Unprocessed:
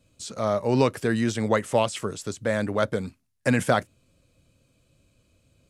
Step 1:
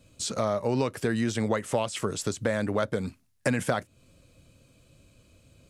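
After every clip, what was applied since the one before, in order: compression 4:1, threshold -30 dBFS, peak gain reduction 13 dB; trim +5.5 dB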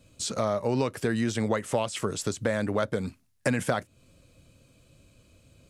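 no audible change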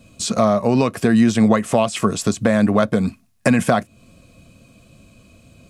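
small resonant body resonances 210/690/1100/2500 Hz, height 9 dB; trim +7.5 dB

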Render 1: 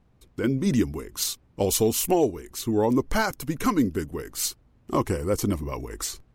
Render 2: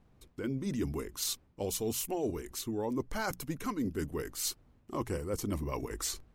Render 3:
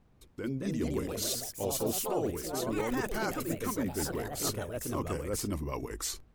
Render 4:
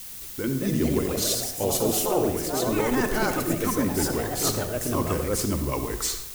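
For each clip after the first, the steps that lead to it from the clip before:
hum notches 60/120/180 Hz; reverse; compression 6:1, threshold -30 dBFS, peak gain reduction 12.5 dB; reverse; trim -1.5 dB
ever faster or slower copies 283 ms, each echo +3 st, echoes 3
added noise blue -47 dBFS; reverberation RT60 0.80 s, pre-delay 53 ms, DRR 8 dB; trim +7.5 dB

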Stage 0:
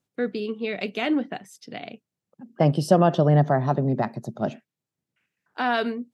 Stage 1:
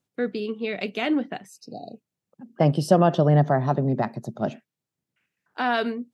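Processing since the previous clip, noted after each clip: spectral replace 1.51–1.96 s, 840–3800 Hz after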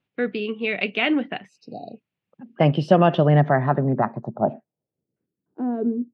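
low-pass sweep 2.7 kHz -> 330 Hz, 3.32–5.40 s; trim +1.5 dB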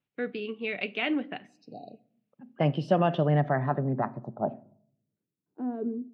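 simulated room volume 920 m³, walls furnished, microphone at 0.35 m; trim -8 dB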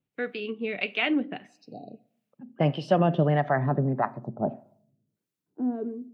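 harmonic tremolo 1.6 Hz, depth 70%, crossover 540 Hz; trim +5.5 dB

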